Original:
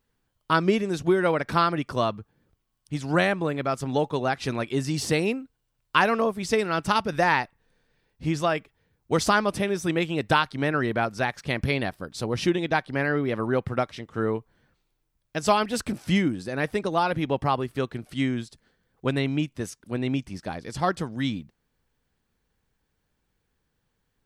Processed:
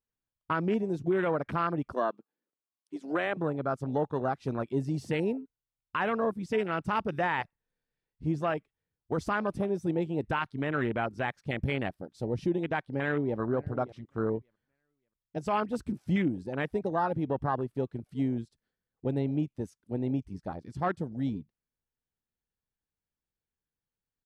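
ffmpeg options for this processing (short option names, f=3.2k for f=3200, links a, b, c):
-filter_complex "[0:a]asettb=1/sr,asplit=3[a][b][c];[a]atrim=end=1.924[d];[b]atrim=start=1.92:end=3.37,asetpts=PTS-STARTPTS,afade=t=in:d=0.004:c=qsin,afade=t=out:st=1.446:d=0.004:c=qsin,highpass=f=250:w=0.5412,highpass=f=250:w=1.3066[e];[c]atrim=start=3.366[f];[d][e]acrossfade=d=0.004:c1=hsin:c2=qsin[g];[g][f]acrossfade=d=0.004:c1=qsin:c2=hsin,asplit=2[h][i];[i]afade=t=in:st=12.91:d=0.01,afade=t=out:st=13.39:d=0.01,aecho=0:1:580|1160|1740:0.177828|0.0533484|0.0160045[j];[h][j]amix=inputs=2:normalize=0,afwtdn=0.0398,alimiter=limit=-15.5dB:level=0:latency=1:release=12,volume=-3.5dB"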